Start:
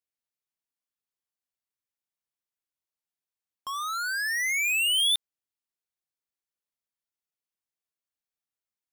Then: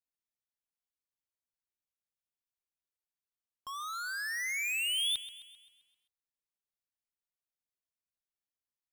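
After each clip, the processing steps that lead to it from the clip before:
low-shelf EQ 100 Hz +9.5 dB
feedback echo at a low word length 131 ms, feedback 55%, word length 10 bits, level −15 dB
level −8 dB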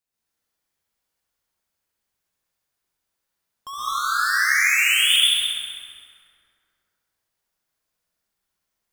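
on a send: flutter between parallel walls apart 11.5 metres, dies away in 0.68 s
on the sum: dense smooth reverb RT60 2.5 s, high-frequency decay 0.5×, pre-delay 105 ms, DRR −8 dB
level +6.5 dB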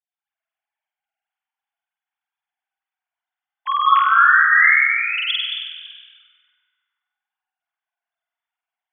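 three sine waves on the formant tracks
on a send: flutter between parallel walls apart 8.3 metres, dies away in 1.1 s
on the sum: level +1 dB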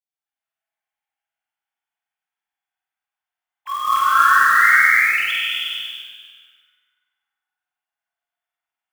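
floating-point word with a short mantissa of 2 bits
reverb whose tail is shaped and stops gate 470 ms flat, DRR −5.5 dB
level −6.5 dB

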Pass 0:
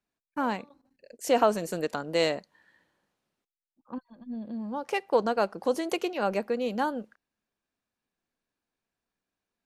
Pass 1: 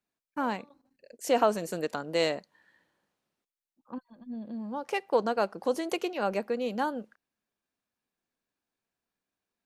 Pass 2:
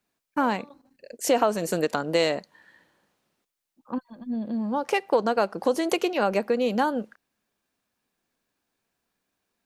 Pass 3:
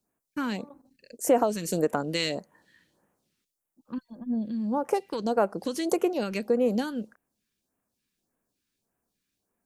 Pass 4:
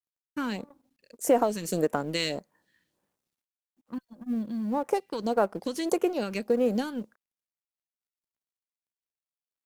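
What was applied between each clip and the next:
low-shelf EQ 61 Hz −7 dB; level −1.5 dB
downward compressor 2.5 to 1, threshold −29 dBFS, peak gain reduction 8 dB; level +9 dB
all-pass phaser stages 2, 1.7 Hz, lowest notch 660–4,100 Hz
mu-law and A-law mismatch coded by A

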